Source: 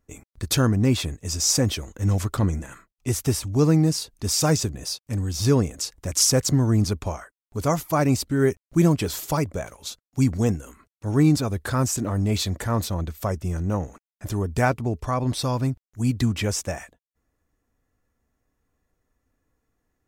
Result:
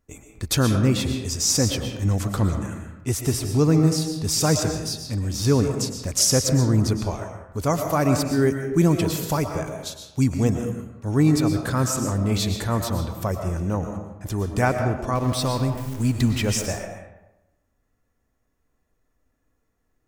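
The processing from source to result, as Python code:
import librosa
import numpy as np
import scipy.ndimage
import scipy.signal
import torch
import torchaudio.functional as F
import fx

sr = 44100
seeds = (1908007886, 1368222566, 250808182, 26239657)

y = fx.zero_step(x, sr, step_db=-34.0, at=(15.15, 16.66))
y = fx.rev_freeverb(y, sr, rt60_s=0.97, hf_ratio=0.55, predelay_ms=80, drr_db=5.0)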